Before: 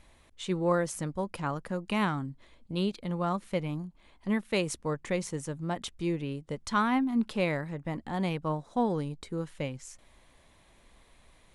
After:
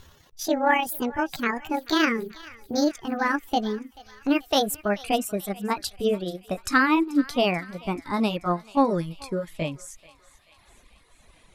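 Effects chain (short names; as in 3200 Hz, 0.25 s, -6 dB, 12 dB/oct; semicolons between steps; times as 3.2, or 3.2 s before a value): gliding pitch shift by +9 st ending unshifted; reverb removal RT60 1.8 s; thinning echo 0.435 s, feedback 67%, high-pass 1100 Hz, level -18 dB; gain +8.5 dB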